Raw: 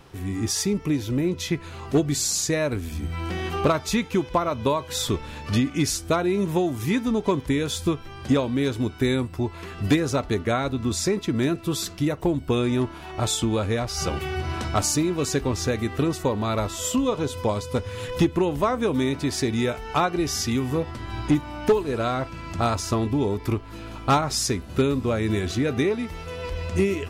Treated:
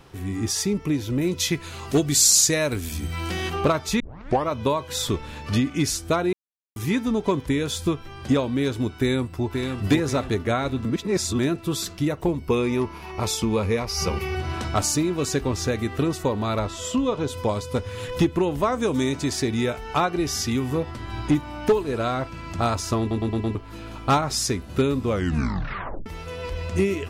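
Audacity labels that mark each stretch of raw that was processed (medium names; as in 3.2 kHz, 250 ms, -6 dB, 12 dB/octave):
1.210000	3.500000	treble shelf 3 kHz +10.5 dB
4.000000	4.000000	tape start 0.48 s
6.330000	6.760000	mute
8.970000	9.820000	echo throw 530 ms, feedback 40%, level -5 dB
10.850000	11.390000	reverse
12.280000	14.350000	rippled EQ curve crests per octave 0.84, crest to trough 8 dB
16.590000	17.280000	distance through air 56 m
18.720000	19.330000	peaking EQ 6.9 kHz +9.5 dB 0.75 oct
23.000000	23.000000	stutter in place 0.11 s, 5 plays
25.070000	25.070000	tape stop 0.99 s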